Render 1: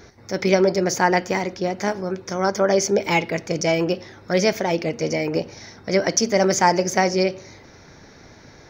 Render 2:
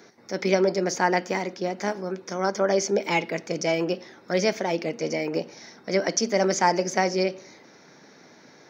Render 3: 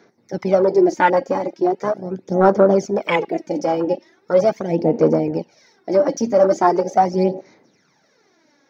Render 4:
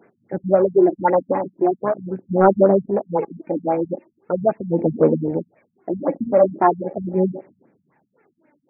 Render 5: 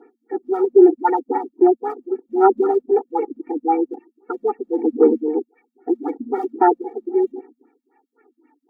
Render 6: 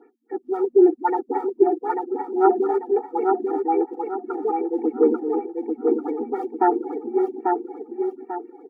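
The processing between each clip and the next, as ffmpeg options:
ffmpeg -i in.wav -filter_complex "[0:a]highpass=frequency=170:width=0.5412,highpass=frequency=170:width=1.3066,acrossover=split=8700[link_01][link_02];[link_02]acompressor=threshold=-54dB:ratio=4:attack=1:release=60[link_03];[link_01][link_03]amix=inputs=2:normalize=0,volume=-4dB" out.wav
ffmpeg -i in.wav -af "aphaser=in_gain=1:out_gain=1:delay=3.7:decay=0.66:speed=0.4:type=sinusoidal,acontrast=89,afwtdn=0.141,volume=-1dB" out.wav
ffmpeg -i in.wav -af "afftfilt=real='re*lt(b*sr/1024,210*pow(2800/210,0.5+0.5*sin(2*PI*3.8*pts/sr)))':imag='im*lt(b*sr/1024,210*pow(2800/210,0.5+0.5*sin(2*PI*3.8*pts/sr)))':win_size=1024:overlap=0.75" out.wav
ffmpeg -i in.wav -filter_complex "[0:a]aphaser=in_gain=1:out_gain=1:delay=2.6:decay=0.36:speed=1.2:type=sinusoidal,asplit=2[link_01][link_02];[link_02]alimiter=limit=-8.5dB:level=0:latency=1:release=16,volume=1dB[link_03];[link_01][link_03]amix=inputs=2:normalize=0,afftfilt=real='re*eq(mod(floor(b*sr/1024/240),2),1)':imag='im*eq(mod(floor(b*sr/1024/240),2),1)':win_size=1024:overlap=0.75,volume=-3.5dB" out.wav
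ffmpeg -i in.wav -af "aecho=1:1:842|1684|2526|3368|4210:0.668|0.241|0.0866|0.0312|0.0112,volume=-4dB" out.wav

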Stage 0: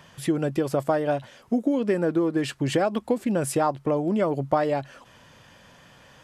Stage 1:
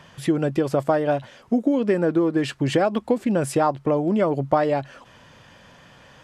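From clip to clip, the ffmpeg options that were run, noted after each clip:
ffmpeg -i in.wav -af "highshelf=frequency=9000:gain=-10,volume=3dB" out.wav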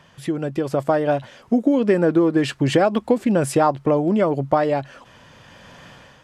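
ffmpeg -i in.wav -af "dynaudnorm=framelen=490:gausssize=3:maxgain=11dB,volume=-3.5dB" out.wav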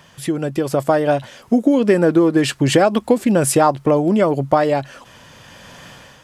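ffmpeg -i in.wav -af "crystalizer=i=1.5:c=0,volume=3dB" out.wav

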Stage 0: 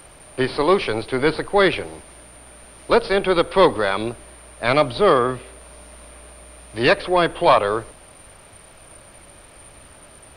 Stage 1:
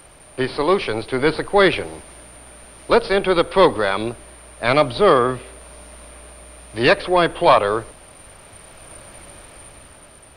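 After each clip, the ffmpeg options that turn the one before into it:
ffmpeg -i in.wav -af "dynaudnorm=framelen=290:gausssize=9:maxgain=11.5dB,volume=-1dB" out.wav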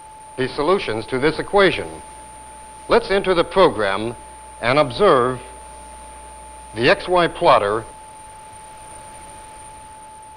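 ffmpeg -i in.wav -af "aeval=exprs='val(0)+0.0126*sin(2*PI*870*n/s)':channel_layout=same" out.wav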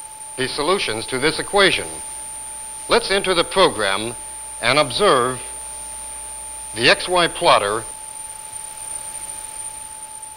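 ffmpeg -i in.wav -af "crystalizer=i=5.5:c=0,volume=-3dB" out.wav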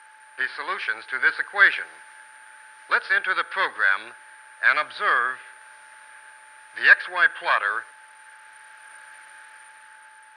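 ffmpeg -i in.wav -af "bandpass=frequency=1600:width_type=q:width=7.8:csg=0,volume=8.5dB" out.wav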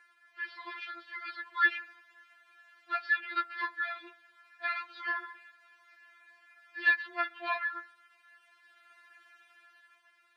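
ffmpeg -i in.wav -af "afftfilt=real='re*4*eq(mod(b,16),0)':imag='im*4*eq(mod(b,16),0)':win_size=2048:overlap=0.75,volume=-9dB" out.wav

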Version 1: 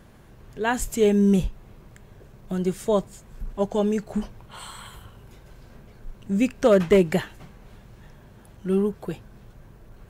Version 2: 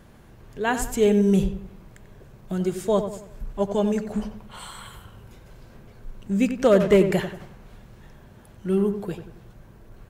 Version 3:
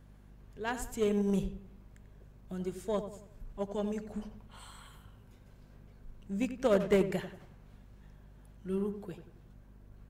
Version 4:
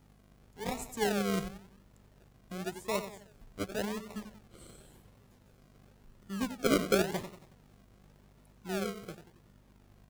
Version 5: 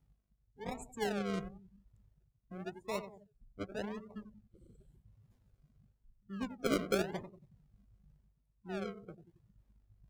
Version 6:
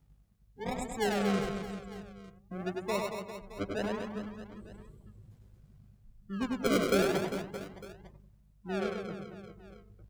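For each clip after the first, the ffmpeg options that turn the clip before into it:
ffmpeg -i in.wav -filter_complex "[0:a]asplit=2[link_01][link_02];[link_02]adelay=92,lowpass=frequency=2300:poles=1,volume=-9dB,asplit=2[link_03][link_04];[link_04]adelay=92,lowpass=frequency=2300:poles=1,volume=0.43,asplit=2[link_05][link_06];[link_06]adelay=92,lowpass=frequency=2300:poles=1,volume=0.43,asplit=2[link_07][link_08];[link_08]adelay=92,lowpass=frequency=2300:poles=1,volume=0.43,asplit=2[link_09][link_10];[link_10]adelay=92,lowpass=frequency=2300:poles=1,volume=0.43[link_11];[link_01][link_03][link_05][link_07][link_09][link_11]amix=inputs=6:normalize=0" out.wav
ffmpeg -i in.wav -af "aeval=exprs='val(0)+0.00794*(sin(2*PI*50*n/s)+sin(2*PI*2*50*n/s)/2+sin(2*PI*3*50*n/s)/3+sin(2*PI*4*50*n/s)/4+sin(2*PI*5*50*n/s)/5)':channel_layout=same,aeval=exprs='0.447*(cos(1*acos(clip(val(0)/0.447,-1,1)))-cos(1*PI/2))+0.0631*(cos(3*acos(clip(val(0)/0.447,-1,1)))-cos(3*PI/2))':channel_layout=same,volume=-8dB" out.wav
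ffmpeg -i in.wav -filter_complex "[0:a]lowshelf=frequency=99:gain=-10.5,acrossover=split=3900[link_01][link_02];[link_01]acrusher=samples=39:mix=1:aa=0.000001:lfo=1:lforange=23.4:lforate=0.92[link_03];[link_03][link_02]amix=inputs=2:normalize=0" out.wav
ffmpeg -i in.wav -af "afftdn=noise_reduction=26:noise_floor=-44,areverse,acompressor=mode=upward:threshold=-48dB:ratio=2.5,areverse,volume=-5dB" out.wav
ffmpeg -i in.wav -filter_complex "[0:a]asoftclip=type=tanh:threshold=-26dB,asplit=2[link_01][link_02];[link_02]aecho=0:1:100|230|399|618.7|904.3:0.631|0.398|0.251|0.158|0.1[link_03];[link_01][link_03]amix=inputs=2:normalize=0,volume=6dB" out.wav

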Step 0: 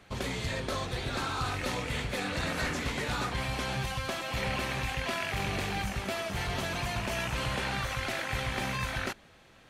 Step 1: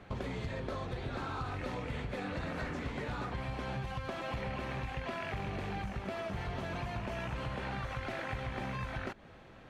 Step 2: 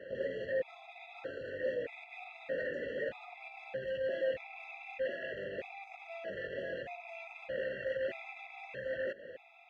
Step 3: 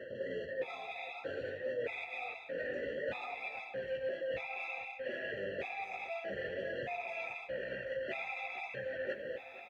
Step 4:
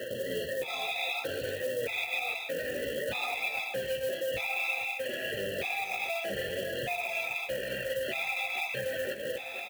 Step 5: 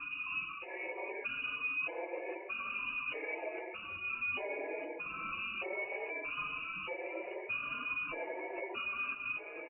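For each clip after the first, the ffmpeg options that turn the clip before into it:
ffmpeg -i in.wav -af "lowpass=frequency=1200:poles=1,acompressor=threshold=-41dB:ratio=6,volume=5.5dB" out.wav
ffmpeg -i in.wav -filter_complex "[0:a]alimiter=level_in=12dB:limit=-24dB:level=0:latency=1:release=17,volume=-12dB,asplit=3[link_01][link_02][link_03];[link_01]bandpass=frequency=530:width_type=q:width=8,volume=0dB[link_04];[link_02]bandpass=frequency=1840:width_type=q:width=8,volume=-6dB[link_05];[link_03]bandpass=frequency=2480:width_type=q:width=8,volume=-9dB[link_06];[link_04][link_05][link_06]amix=inputs=3:normalize=0,afftfilt=real='re*gt(sin(2*PI*0.8*pts/sr)*(1-2*mod(floor(b*sr/1024/670),2)),0)':imag='im*gt(sin(2*PI*0.8*pts/sr)*(1-2*mod(floor(b*sr/1024/670),2)),0)':win_size=1024:overlap=0.75,volume=18dB" out.wav
ffmpeg -i in.wav -filter_complex "[0:a]areverse,acompressor=threshold=-45dB:ratio=6,areverse,flanger=delay=8.1:depth=8.4:regen=-29:speed=0.58:shape=sinusoidal,asplit=2[link_01][link_02];[link_02]adelay=470,lowpass=frequency=3800:poles=1,volume=-17.5dB,asplit=2[link_03][link_04];[link_04]adelay=470,lowpass=frequency=3800:poles=1,volume=0.26[link_05];[link_01][link_03][link_05]amix=inputs=3:normalize=0,volume=12dB" out.wav
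ffmpeg -i in.wav -filter_complex "[0:a]acrossover=split=180[link_01][link_02];[link_02]alimiter=level_in=10.5dB:limit=-24dB:level=0:latency=1:release=220,volume=-10.5dB[link_03];[link_01][link_03]amix=inputs=2:normalize=0,acrusher=bits=7:mode=log:mix=0:aa=0.000001,aexciter=amount=3.8:drive=4.2:freq=2800,volume=8.5dB" out.wav
ffmpeg -i in.wav -filter_complex "[0:a]lowpass=frequency=2600:width_type=q:width=0.5098,lowpass=frequency=2600:width_type=q:width=0.6013,lowpass=frequency=2600:width_type=q:width=0.9,lowpass=frequency=2600:width_type=q:width=2.563,afreqshift=-3000,asplit=2[link_01][link_02];[link_02]adelay=4.4,afreqshift=0.64[link_03];[link_01][link_03]amix=inputs=2:normalize=1,volume=-2.5dB" out.wav

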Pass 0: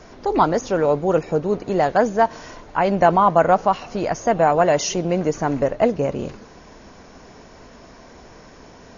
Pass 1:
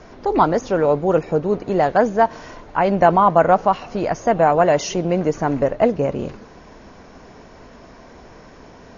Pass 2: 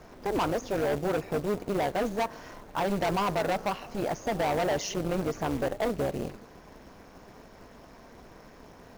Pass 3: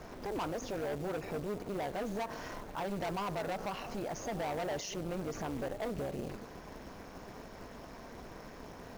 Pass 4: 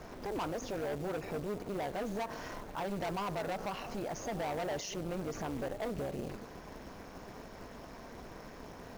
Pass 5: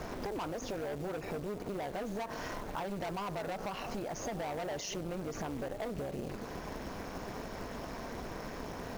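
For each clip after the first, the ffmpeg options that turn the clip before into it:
ffmpeg -i in.wav -af "lowpass=frequency=3700:poles=1,volume=1.5dB" out.wav
ffmpeg -i in.wav -af "volume=17dB,asoftclip=hard,volume=-17dB,tremolo=f=210:d=0.71,acrusher=bits=4:mode=log:mix=0:aa=0.000001,volume=-4.5dB" out.wav
ffmpeg -i in.wav -af "alimiter=level_in=9dB:limit=-24dB:level=0:latency=1:release=45,volume=-9dB,volume=2dB" out.wav
ffmpeg -i in.wav -af anull out.wav
ffmpeg -i in.wav -af "acompressor=threshold=-43dB:ratio=6,volume=7.5dB" out.wav

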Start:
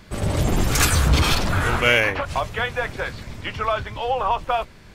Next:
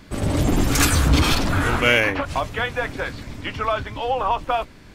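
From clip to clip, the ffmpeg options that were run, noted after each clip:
ffmpeg -i in.wav -af "equalizer=frequency=280:width=4.4:gain=9.5" out.wav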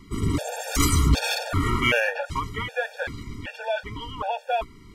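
ffmpeg -i in.wav -af "afftfilt=real='re*gt(sin(2*PI*1.3*pts/sr)*(1-2*mod(floor(b*sr/1024/470),2)),0)':imag='im*gt(sin(2*PI*1.3*pts/sr)*(1-2*mod(floor(b*sr/1024/470),2)),0)':win_size=1024:overlap=0.75,volume=-1.5dB" out.wav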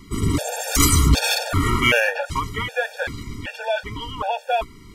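ffmpeg -i in.wav -af "highshelf=frequency=5100:gain=6,volume=3.5dB" out.wav

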